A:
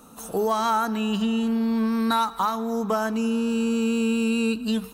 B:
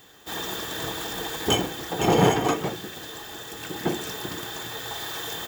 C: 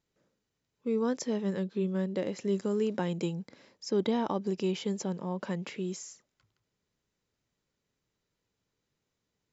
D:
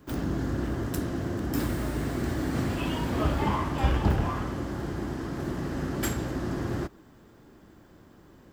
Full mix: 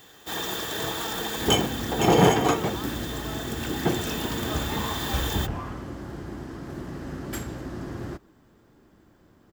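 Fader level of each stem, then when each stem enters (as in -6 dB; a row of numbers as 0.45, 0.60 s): -17.5 dB, +1.0 dB, off, -4.0 dB; 0.35 s, 0.00 s, off, 1.30 s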